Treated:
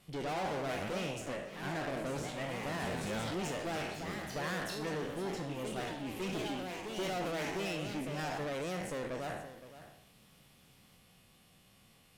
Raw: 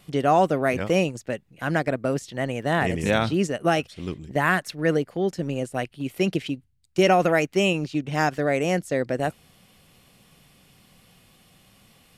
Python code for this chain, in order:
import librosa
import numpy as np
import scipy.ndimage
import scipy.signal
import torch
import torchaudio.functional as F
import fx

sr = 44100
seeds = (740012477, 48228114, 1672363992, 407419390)

p1 = fx.spec_trails(x, sr, decay_s=0.6)
p2 = fx.tube_stage(p1, sr, drive_db=28.0, bias=0.5)
p3 = fx.echo_pitch(p2, sr, ms=120, semitones=2, count=3, db_per_echo=-6.0)
p4 = p3 + fx.echo_single(p3, sr, ms=516, db=-14.0, dry=0)
y = p4 * librosa.db_to_amplitude(-7.5)